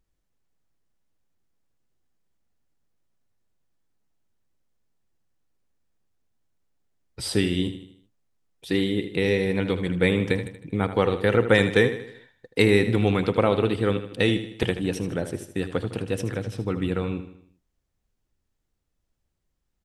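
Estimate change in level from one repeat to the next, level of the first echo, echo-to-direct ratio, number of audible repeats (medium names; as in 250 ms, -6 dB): -6.5 dB, -11.5 dB, -10.5 dB, 4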